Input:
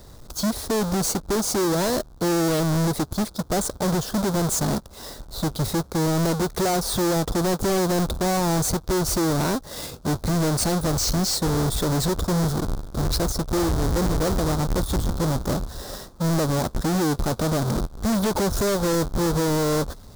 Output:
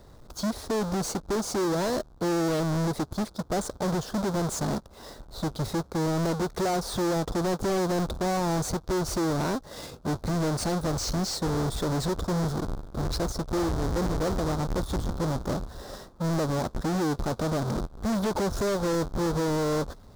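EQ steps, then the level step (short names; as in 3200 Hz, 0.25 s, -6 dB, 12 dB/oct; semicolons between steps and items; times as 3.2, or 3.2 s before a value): dynamic EQ 6000 Hz, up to +4 dB, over -41 dBFS, Q 0.84; low shelf 220 Hz -3.5 dB; high shelf 3600 Hz -11.5 dB; -3.0 dB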